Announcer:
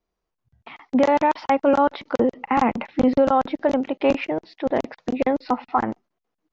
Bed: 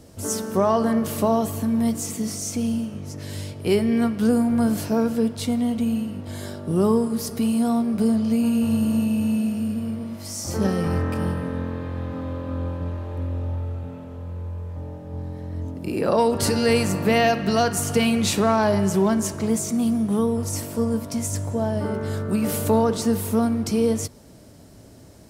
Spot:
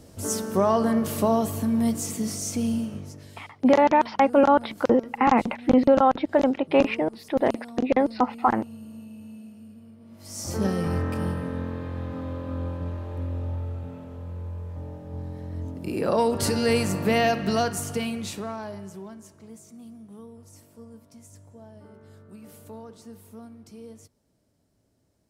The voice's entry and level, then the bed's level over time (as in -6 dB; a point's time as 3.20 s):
2.70 s, 0.0 dB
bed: 2.96 s -1.5 dB
3.50 s -20.5 dB
9.98 s -20.5 dB
10.41 s -3 dB
17.53 s -3 dB
19.22 s -23 dB